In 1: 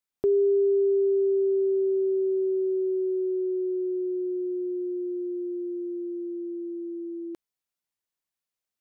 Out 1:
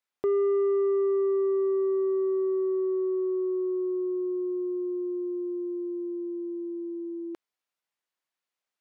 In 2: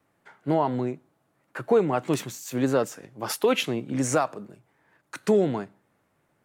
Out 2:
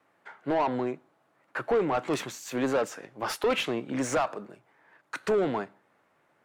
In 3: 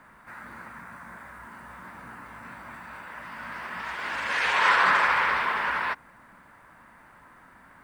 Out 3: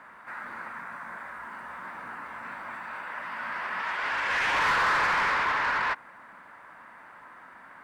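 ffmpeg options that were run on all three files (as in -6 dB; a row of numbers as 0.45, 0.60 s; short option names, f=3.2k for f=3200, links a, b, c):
-filter_complex "[0:a]asplit=2[a][b];[b]highpass=f=720:p=1,volume=21dB,asoftclip=type=tanh:threshold=-8dB[c];[a][c]amix=inputs=2:normalize=0,lowpass=f=2.3k:p=1,volume=-6dB,volume=-8.5dB"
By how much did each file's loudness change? -1.5, -3.5, -4.5 LU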